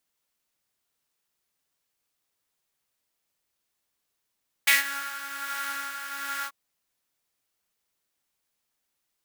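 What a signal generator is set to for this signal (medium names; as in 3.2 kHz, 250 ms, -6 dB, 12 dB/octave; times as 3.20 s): synth patch with tremolo C#4, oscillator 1 triangle, oscillator 2 saw, interval 0 st, detune 14 cents, oscillator 2 level -5 dB, sub -23 dB, noise -11 dB, filter highpass, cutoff 1.1 kHz, Q 5, filter envelope 1 oct, filter sustain 40%, attack 8.9 ms, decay 0.15 s, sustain -18 dB, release 0.06 s, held 1.78 s, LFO 1.3 Hz, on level 5 dB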